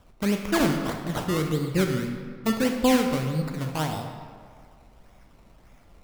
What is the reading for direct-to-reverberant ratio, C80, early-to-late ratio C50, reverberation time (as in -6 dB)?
4.0 dB, 6.5 dB, 5.0 dB, 1.9 s